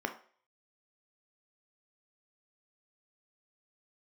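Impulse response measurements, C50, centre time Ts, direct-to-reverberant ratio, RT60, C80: 12.0 dB, 10 ms, 5.0 dB, 0.45 s, 17.0 dB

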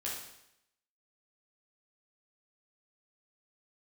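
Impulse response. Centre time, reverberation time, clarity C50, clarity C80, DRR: 51 ms, 0.80 s, 2.0 dB, 5.5 dB, −5.5 dB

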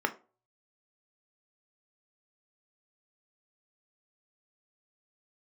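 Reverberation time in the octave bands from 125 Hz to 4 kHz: 0.65, 0.35, 0.40, 0.35, 0.25, 0.20 seconds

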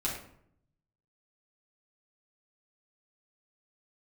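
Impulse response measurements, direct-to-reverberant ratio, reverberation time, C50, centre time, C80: −5.5 dB, 0.65 s, 4.5 dB, 35 ms, 8.0 dB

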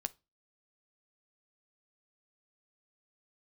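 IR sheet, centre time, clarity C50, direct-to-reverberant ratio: 2 ms, 24.0 dB, 11.0 dB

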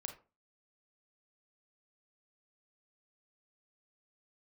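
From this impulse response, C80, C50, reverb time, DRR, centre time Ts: 16.0 dB, 9.5 dB, 0.35 s, 5.0 dB, 13 ms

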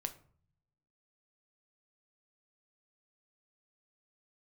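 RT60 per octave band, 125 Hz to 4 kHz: 1.2, 0.95, 0.50, 0.50, 0.40, 0.30 seconds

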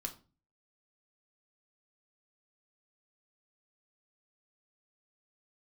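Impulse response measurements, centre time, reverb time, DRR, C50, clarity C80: 9 ms, 0.35 s, 2.5 dB, 14.0 dB, 19.0 dB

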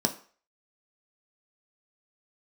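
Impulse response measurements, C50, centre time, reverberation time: 14.5 dB, 9 ms, 0.45 s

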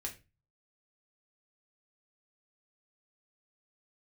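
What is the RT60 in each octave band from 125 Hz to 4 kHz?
0.60, 0.35, 0.30, 0.25, 0.25, 0.25 seconds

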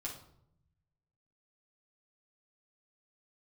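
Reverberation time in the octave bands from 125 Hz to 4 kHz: 1.6, 1.1, 0.80, 0.65, 0.50, 0.45 seconds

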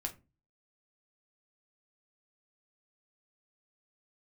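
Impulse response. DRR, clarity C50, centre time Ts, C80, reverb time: 2.5 dB, 16.0 dB, 9 ms, 23.0 dB, 0.30 s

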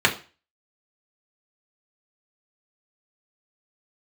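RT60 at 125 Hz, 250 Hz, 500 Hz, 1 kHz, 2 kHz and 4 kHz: 0.40, 0.35, 0.35, 0.35, 0.35, 0.35 seconds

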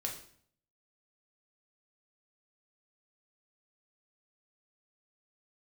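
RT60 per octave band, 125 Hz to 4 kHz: 0.80, 0.70, 0.60, 0.55, 0.55, 0.50 seconds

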